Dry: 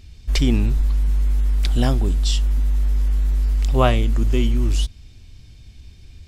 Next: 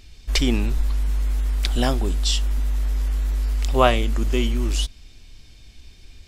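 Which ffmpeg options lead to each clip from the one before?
ffmpeg -i in.wav -af "equalizer=frequency=100:width=0.58:gain=-12,volume=3dB" out.wav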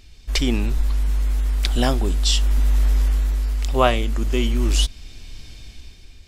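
ffmpeg -i in.wav -af "dynaudnorm=framelen=110:gausssize=13:maxgain=11dB,volume=-1dB" out.wav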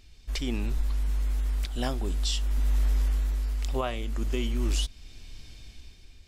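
ffmpeg -i in.wav -af "alimiter=limit=-10.5dB:level=0:latency=1:release=370,volume=-7dB" out.wav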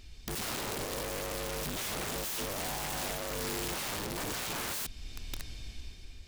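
ffmpeg -i in.wav -af "aeval=exprs='(mod(53.1*val(0)+1,2)-1)/53.1':channel_layout=same,volume=3dB" out.wav

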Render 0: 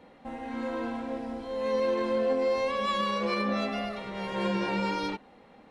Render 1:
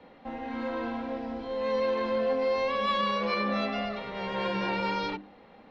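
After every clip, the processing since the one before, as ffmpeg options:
ffmpeg -i in.wav -filter_complex "[0:a]lowpass=frequency=5100:width=0.5412,lowpass=frequency=5100:width=1.3066,bandreject=frequency=50:width_type=h:width=6,bandreject=frequency=100:width_type=h:width=6,bandreject=frequency=150:width_type=h:width=6,bandreject=frequency=200:width_type=h:width=6,bandreject=frequency=250:width_type=h:width=6,bandreject=frequency=300:width_type=h:width=6,bandreject=frequency=350:width_type=h:width=6,acrossover=split=230|460|2900[link_01][link_02][link_03][link_04];[link_02]alimiter=level_in=13.5dB:limit=-24dB:level=0:latency=1,volume=-13.5dB[link_05];[link_01][link_05][link_03][link_04]amix=inputs=4:normalize=0,volume=1.5dB" out.wav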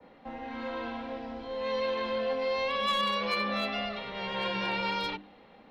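ffmpeg -i in.wav -filter_complex "[0:a]adynamicequalizer=threshold=0.00316:dfrequency=3300:dqfactor=1.4:tfrequency=3300:tqfactor=1.4:attack=5:release=100:ratio=0.375:range=3.5:mode=boostabove:tftype=bell,acrossover=split=230|390|2200[link_01][link_02][link_03][link_04];[link_02]acompressor=threshold=-50dB:ratio=6[link_05];[link_04]aeval=exprs='clip(val(0),-1,0.0316)':channel_layout=same[link_06];[link_01][link_05][link_03][link_06]amix=inputs=4:normalize=0,volume=-2dB" out.wav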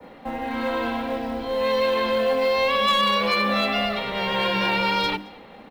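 ffmpeg -i in.wav -filter_complex "[0:a]asplit=2[link_01][link_02];[link_02]alimiter=level_in=2.5dB:limit=-24dB:level=0:latency=1,volume=-2.5dB,volume=0.5dB[link_03];[link_01][link_03]amix=inputs=2:normalize=0,aecho=1:1:220:0.0631,acrusher=bits=8:mode=log:mix=0:aa=0.000001,volume=4.5dB" out.wav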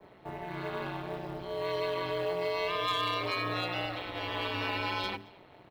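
ffmpeg -i in.wav -af "aeval=exprs='val(0)*sin(2*PI*92*n/s)':channel_layout=same,volume=-8dB" out.wav

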